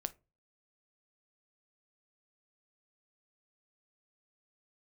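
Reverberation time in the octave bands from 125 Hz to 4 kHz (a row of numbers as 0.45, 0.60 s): 0.50, 0.35, 0.30, 0.25, 0.20, 0.15 s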